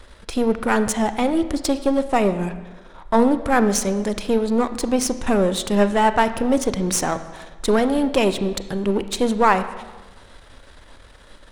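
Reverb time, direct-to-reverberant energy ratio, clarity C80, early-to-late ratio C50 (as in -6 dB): 1.2 s, 11.0 dB, 13.5 dB, 12.0 dB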